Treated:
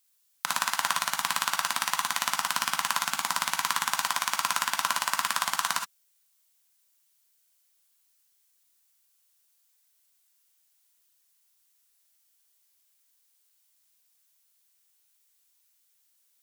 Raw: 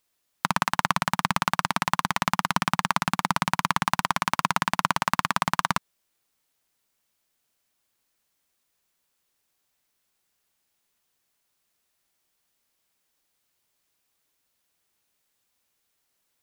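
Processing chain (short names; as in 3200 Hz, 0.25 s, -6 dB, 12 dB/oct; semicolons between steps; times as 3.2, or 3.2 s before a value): HPF 1000 Hz 6 dB/oct; high shelf 4300 Hz +11.5 dB; non-linear reverb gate 90 ms rising, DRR 3 dB; gain -5 dB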